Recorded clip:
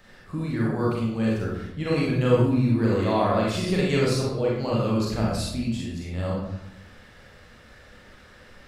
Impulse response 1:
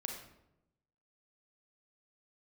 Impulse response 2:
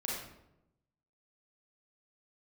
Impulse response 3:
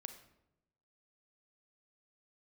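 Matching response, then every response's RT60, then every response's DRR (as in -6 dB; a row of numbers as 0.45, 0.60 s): 2; 0.85, 0.85, 0.90 s; 1.5, -5.0, 7.5 dB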